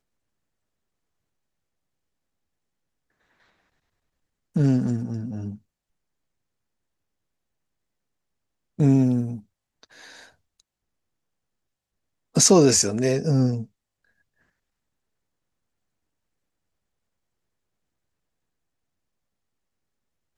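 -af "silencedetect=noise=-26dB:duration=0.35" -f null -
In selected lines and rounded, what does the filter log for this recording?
silence_start: 0.00
silence_end: 4.56 | silence_duration: 4.56
silence_start: 5.50
silence_end: 8.80 | silence_duration: 3.30
silence_start: 9.35
silence_end: 12.36 | silence_duration: 3.01
silence_start: 13.62
silence_end: 20.38 | silence_duration: 6.76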